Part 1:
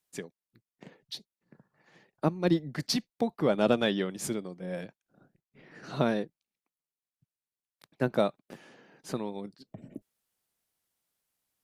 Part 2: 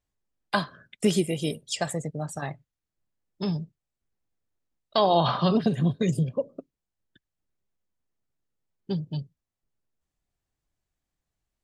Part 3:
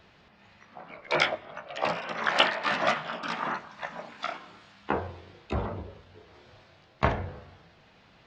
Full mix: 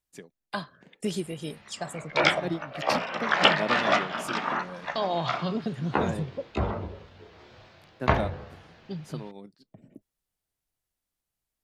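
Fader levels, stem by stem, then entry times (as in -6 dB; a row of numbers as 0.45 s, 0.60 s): -6.0 dB, -7.5 dB, +2.5 dB; 0.00 s, 0.00 s, 1.05 s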